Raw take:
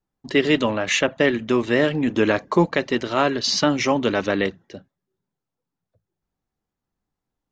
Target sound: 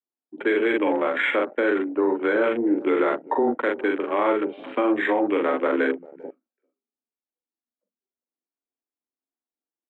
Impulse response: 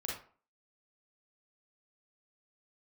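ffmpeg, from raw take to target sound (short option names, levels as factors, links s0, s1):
-filter_complex "[0:a]highpass=f=160:t=q:w=0.5412,highpass=f=160:t=q:w=1.307,lowpass=f=3100:t=q:w=0.5176,lowpass=f=3100:t=q:w=0.7071,lowpass=f=3100:t=q:w=1.932,afreqshift=150,asplit=2[s0][s1];[s1]adelay=32,volume=0.596[s2];[s0][s2]amix=inputs=2:normalize=0,asplit=2[s3][s4];[s4]adelay=300,highpass=300,lowpass=3400,asoftclip=type=hard:threshold=0.224,volume=0.0891[s5];[s3][s5]amix=inputs=2:normalize=0,asetrate=33516,aresample=44100,afwtdn=0.0282,alimiter=limit=0.224:level=0:latency=1:release=28"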